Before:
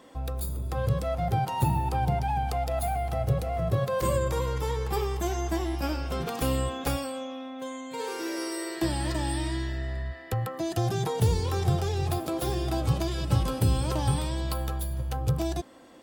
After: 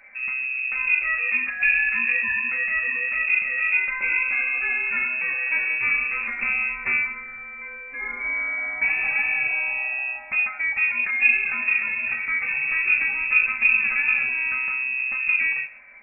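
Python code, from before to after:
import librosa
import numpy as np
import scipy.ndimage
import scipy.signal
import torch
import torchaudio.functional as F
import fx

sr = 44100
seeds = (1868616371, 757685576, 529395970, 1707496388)

y = fx.rev_fdn(x, sr, rt60_s=0.37, lf_ratio=1.1, hf_ratio=0.85, size_ms=20.0, drr_db=0.0)
y = fx.freq_invert(y, sr, carrier_hz=2600)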